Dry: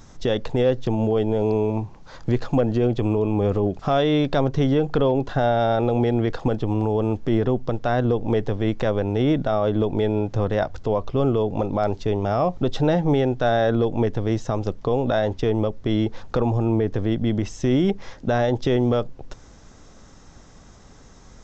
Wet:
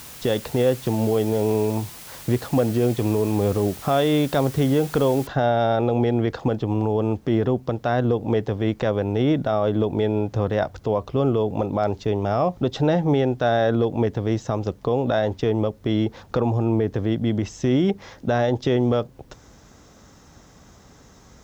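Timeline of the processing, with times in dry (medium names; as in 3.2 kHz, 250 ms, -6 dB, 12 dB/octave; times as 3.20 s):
5.27 s: noise floor step -41 dB -70 dB
whole clip: high-pass 55 Hz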